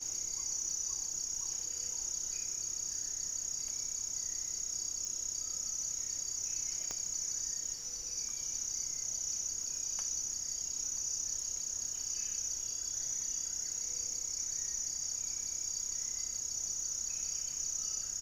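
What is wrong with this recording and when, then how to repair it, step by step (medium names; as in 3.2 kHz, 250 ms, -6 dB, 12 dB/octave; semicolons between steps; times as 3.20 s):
crackle 32 per s -45 dBFS
5.05 s: pop
6.91 s: pop -24 dBFS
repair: de-click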